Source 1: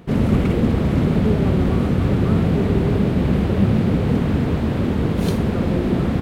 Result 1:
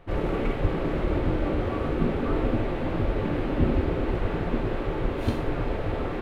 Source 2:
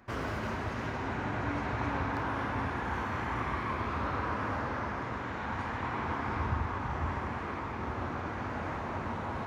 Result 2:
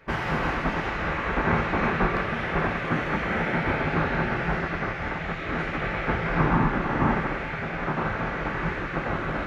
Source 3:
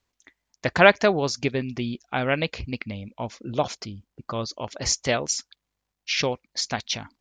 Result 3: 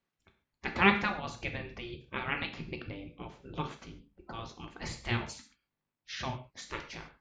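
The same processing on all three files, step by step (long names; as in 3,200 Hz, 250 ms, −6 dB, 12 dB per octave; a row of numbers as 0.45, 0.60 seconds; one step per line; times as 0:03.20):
gate on every frequency bin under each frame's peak −10 dB weak
bass and treble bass +13 dB, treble −12 dB
reverb whose tail is shaped and stops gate 170 ms falling, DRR 4 dB
normalise the peak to −9 dBFS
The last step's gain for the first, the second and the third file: −4.5, +11.5, −5.5 decibels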